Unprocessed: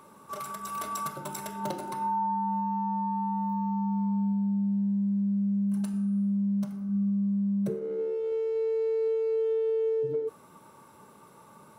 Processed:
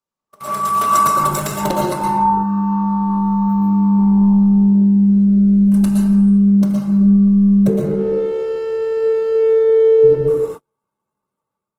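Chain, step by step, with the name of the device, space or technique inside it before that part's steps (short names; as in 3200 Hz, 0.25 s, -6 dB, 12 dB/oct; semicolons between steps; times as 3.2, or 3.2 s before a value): speakerphone in a meeting room (reverb RT60 0.80 s, pre-delay 0.109 s, DRR 0.5 dB; AGC gain up to 8.5 dB; gate -31 dBFS, range -43 dB; gain +5 dB; Opus 16 kbps 48000 Hz)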